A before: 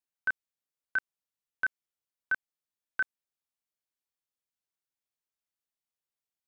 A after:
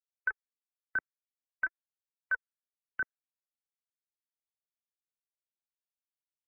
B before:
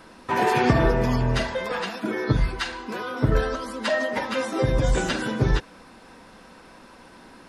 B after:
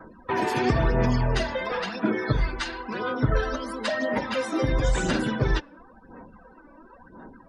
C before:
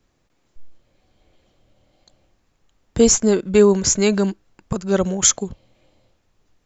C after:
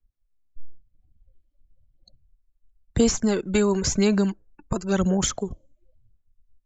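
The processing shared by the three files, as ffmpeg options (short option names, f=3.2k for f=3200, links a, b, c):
-filter_complex "[0:a]aphaser=in_gain=1:out_gain=1:delay=3.5:decay=0.47:speed=0.97:type=sinusoidal,afftdn=nr=32:nf=-44,acrossover=split=330|740|4900[a][b][c][d];[a]acompressor=threshold=-20dB:ratio=4[e];[b]acompressor=threshold=-31dB:ratio=4[f];[c]acompressor=threshold=-29dB:ratio=4[g];[d]acompressor=threshold=-34dB:ratio=4[h];[e][f][g][h]amix=inputs=4:normalize=0"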